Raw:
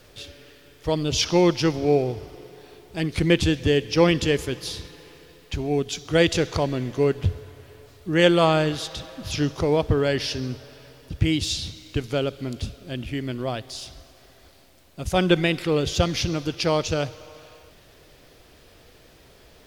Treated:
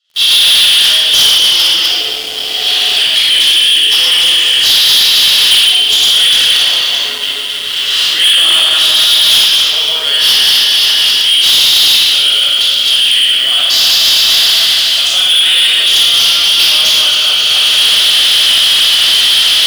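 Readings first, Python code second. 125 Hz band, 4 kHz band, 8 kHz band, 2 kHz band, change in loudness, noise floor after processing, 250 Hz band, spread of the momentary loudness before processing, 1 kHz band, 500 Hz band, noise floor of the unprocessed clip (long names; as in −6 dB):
below −15 dB, +28.5 dB, +21.5 dB, +16.5 dB, +17.5 dB, −17 dBFS, below −10 dB, 17 LU, +5.5 dB, −7.5 dB, −53 dBFS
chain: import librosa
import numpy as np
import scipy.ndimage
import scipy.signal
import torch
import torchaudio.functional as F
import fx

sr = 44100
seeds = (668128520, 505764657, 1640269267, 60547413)

y = fx.reverse_delay_fb(x, sr, ms=133, feedback_pct=54, wet_db=-4.0)
y = fx.recorder_agc(y, sr, target_db=-9.0, rise_db_per_s=64.0, max_gain_db=30)
y = fx.ladder_bandpass(y, sr, hz=3200.0, resonance_pct=80)
y = fx.peak_eq(y, sr, hz=2500.0, db=-12.5, octaves=0.57)
y = fx.room_shoebox(y, sr, seeds[0], volume_m3=3400.0, walls='mixed', distance_m=6.6)
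y = fx.leveller(y, sr, passes=5)
y = F.gain(torch.from_numpy(y), 5.5).numpy()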